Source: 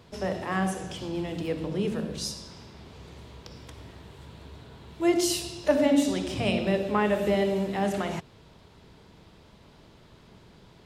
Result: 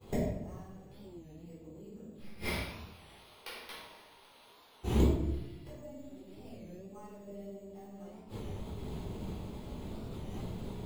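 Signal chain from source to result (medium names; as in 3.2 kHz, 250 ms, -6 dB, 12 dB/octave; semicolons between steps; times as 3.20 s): tracing distortion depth 0.14 ms; 2.46–4.85 s: high-pass 1.1 kHz 12 dB/octave; expander -44 dBFS; low-pass 3.1 kHz 6 dB/octave; peaking EQ 1.7 kHz -9.5 dB 0.97 oct; compression 3:1, threshold -36 dBFS, peak gain reduction 14 dB; flange 1.4 Hz, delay 8.9 ms, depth 3.2 ms, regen -77%; inverted gate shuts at -38 dBFS, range -36 dB; careless resampling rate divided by 6×, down none, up hold; simulated room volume 330 m³, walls mixed, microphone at 3.9 m; warped record 33 1/3 rpm, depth 160 cents; trim +15 dB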